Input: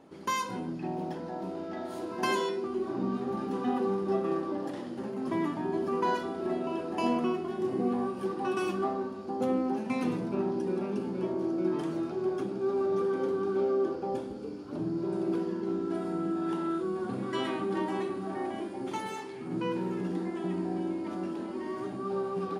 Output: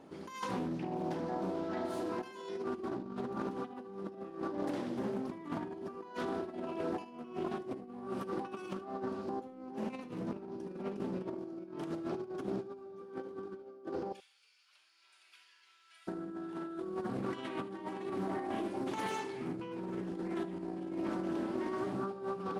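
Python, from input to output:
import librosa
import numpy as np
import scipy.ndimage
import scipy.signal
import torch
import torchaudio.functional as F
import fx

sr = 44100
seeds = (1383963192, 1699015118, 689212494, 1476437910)

y = fx.ladder_highpass(x, sr, hz=2000.0, resonance_pct=40, at=(14.11, 16.07), fade=0.02)
y = fx.over_compress(y, sr, threshold_db=-35.0, ratio=-0.5)
y = y + 10.0 ** (-15.0 / 20.0) * np.pad(y, (int(75 * sr / 1000.0), 0))[:len(y)]
y = fx.doppler_dist(y, sr, depth_ms=0.3)
y = y * 10.0 ** (-3.5 / 20.0)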